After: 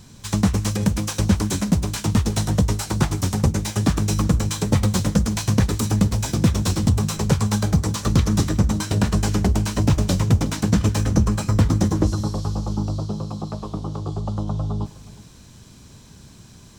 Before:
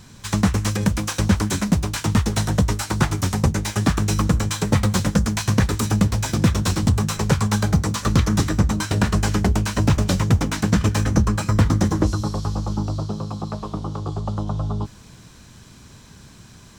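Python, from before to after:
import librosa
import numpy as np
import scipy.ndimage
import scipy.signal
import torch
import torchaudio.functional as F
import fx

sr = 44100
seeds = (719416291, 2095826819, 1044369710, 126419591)

y = fx.peak_eq(x, sr, hz=1600.0, db=-5.5, octaves=1.6)
y = fx.echo_multitap(y, sr, ms=(102, 366), db=(-19.5, -20.0))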